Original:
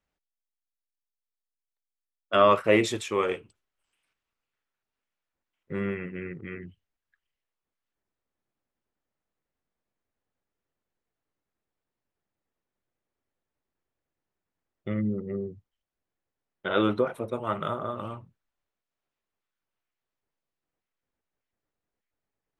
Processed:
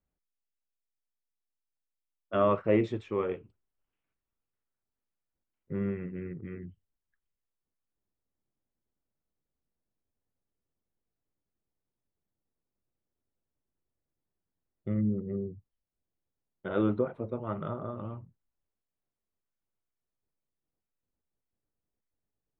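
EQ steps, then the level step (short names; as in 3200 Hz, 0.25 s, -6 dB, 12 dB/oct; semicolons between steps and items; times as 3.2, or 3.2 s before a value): tape spacing loss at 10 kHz 33 dB; low shelf 390 Hz +8 dB; -6.0 dB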